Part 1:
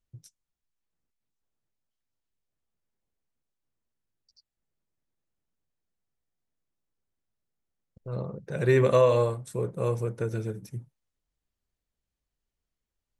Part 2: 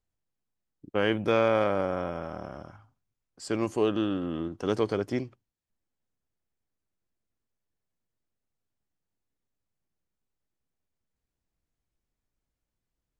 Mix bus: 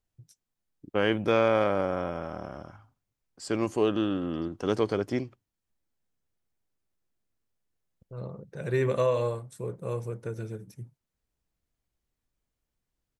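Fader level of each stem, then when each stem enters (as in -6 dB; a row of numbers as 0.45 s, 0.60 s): -5.0 dB, +0.5 dB; 0.05 s, 0.00 s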